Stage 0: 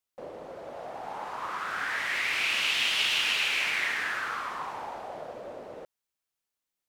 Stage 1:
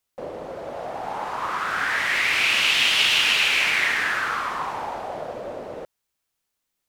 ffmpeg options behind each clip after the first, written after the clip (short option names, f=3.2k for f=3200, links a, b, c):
-af "lowshelf=f=150:g=4.5,volume=7.5dB"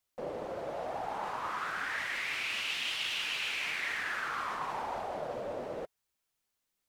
-af "areverse,acompressor=threshold=-29dB:ratio=6,areverse,flanger=delay=0.9:depth=9.4:regen=-46:speed=1:shape=triangular"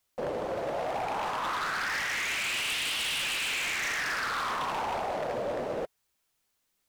-af "aeval=exprs='0.0237*(abs(mod(val(0)/0.0237+3,4)-2)-1)':c=same,volume=6.5dB"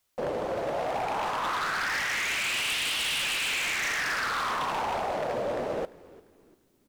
-filter_complex "[0:a]asplit=4[a][b][c][d];[b]adelay=346,afreqshift=-78,volume=-20.5dB[e];[c]adelay=692,afreqshift=-156,volume=-28.9dB[f];[d]adelay=1038,afreqshift=-234,volume=-37.3dB[g];[a][e][f][g]amix=inputs=4:normalize=0,volume=2dB"